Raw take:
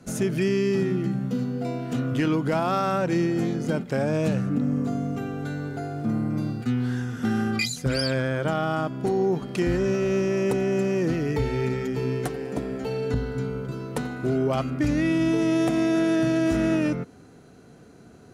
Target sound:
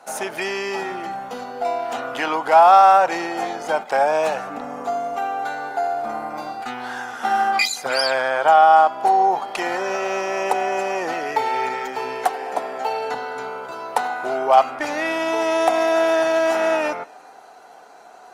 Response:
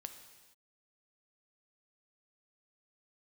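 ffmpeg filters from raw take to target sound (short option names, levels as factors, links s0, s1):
-filter_complex "[0:a]highpass=f=800:t=q:w=4.9,asplit=2[s0][s1];[1:a]atrim=start_sample=2205,lowpass=5900[s2];[s1][s2]afir=irnorm=-1:irlink=0,volume=0.316[s3];[s0][s3]amix=inputs=2:normalize=0,volume=1.88" -ar 48000 -c:a libopus -b:a 24k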